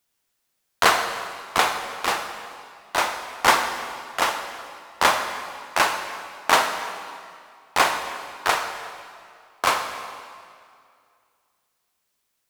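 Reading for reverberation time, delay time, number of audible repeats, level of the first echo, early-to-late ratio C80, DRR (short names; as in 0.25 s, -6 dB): 2.3 s, none, none, none, 8.0 dB, 6.5 dB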